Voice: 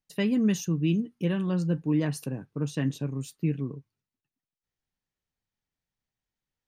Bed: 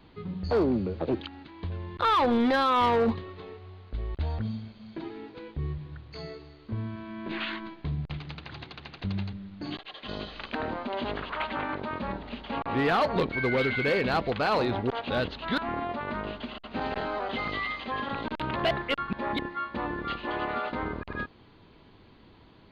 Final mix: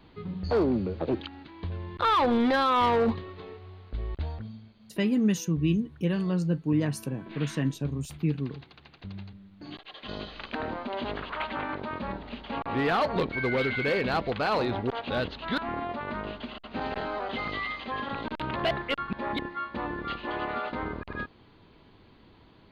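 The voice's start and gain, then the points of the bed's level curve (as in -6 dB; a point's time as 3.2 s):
4.80 s, 0.0 dB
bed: 4.14 s 0 dB
4.49 s -9 dB
9.56 s -9 dB
9.98 s -1 dB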